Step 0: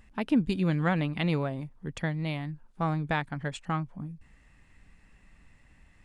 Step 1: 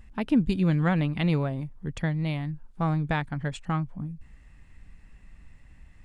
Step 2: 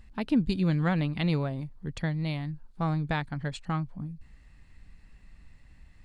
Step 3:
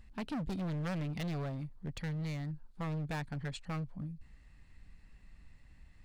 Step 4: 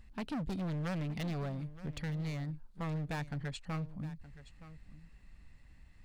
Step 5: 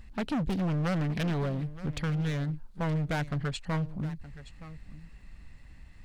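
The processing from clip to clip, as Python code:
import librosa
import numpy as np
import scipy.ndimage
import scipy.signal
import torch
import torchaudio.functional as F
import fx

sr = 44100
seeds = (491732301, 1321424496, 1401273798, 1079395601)

y1 = fx.low_shelf(x, sr, hz=140.0, db=9.5)
y2 = fx.peak_eq(y1, sr, hz=4300.0, db=8.5, octaves=0.38)
y2 = y2 * 10.0 ** (-2.5 / 20.0)
y3 = np.clip(10.0 ** (30.5 / 20.0) * y2, -1.0, 1.0) / 10.0 ** (30.5 / 20.0)
y3 = y3 * 10.0 ** (-4.0 / 20.0)
y4 = y3 + 10.0 ** (-16.0 / 20.0) * np.pad(y3, (int(920 * sr / 1000.0), 0))[:len(y3)]
y5 = fx.doppler_dist(y4, sr, depth_ms=0.36)
y5 = y5 * 10.0 ** (7.5 / 20.0)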